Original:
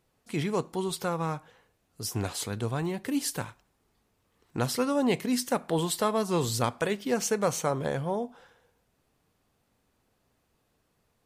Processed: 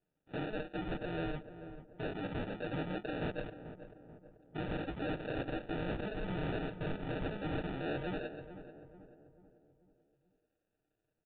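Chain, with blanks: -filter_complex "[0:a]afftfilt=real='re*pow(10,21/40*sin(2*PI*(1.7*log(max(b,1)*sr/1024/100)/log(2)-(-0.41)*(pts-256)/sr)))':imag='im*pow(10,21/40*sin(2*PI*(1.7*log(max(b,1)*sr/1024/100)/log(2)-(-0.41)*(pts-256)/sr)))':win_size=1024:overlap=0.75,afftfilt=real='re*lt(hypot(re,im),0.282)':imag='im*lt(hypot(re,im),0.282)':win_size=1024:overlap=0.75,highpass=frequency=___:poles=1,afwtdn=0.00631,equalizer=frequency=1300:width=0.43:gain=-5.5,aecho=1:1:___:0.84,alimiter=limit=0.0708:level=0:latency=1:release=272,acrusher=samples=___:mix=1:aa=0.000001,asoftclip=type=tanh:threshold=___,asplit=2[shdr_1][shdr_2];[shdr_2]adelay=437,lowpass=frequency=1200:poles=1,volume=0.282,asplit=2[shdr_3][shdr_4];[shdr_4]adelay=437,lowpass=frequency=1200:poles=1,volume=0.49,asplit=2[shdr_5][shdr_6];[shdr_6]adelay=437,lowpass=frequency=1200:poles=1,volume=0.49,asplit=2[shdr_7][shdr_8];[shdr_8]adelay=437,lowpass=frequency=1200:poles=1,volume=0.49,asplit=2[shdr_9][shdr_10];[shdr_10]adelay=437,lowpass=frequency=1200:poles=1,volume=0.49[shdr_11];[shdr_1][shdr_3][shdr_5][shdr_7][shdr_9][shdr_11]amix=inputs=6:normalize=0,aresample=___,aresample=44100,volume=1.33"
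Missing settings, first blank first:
460, 6.5, 41, 0.0188, 8000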